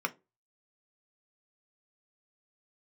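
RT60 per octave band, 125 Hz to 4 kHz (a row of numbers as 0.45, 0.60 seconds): 0.30, 0.30, 0.30, 0.20, 0.20, 0.15 seconds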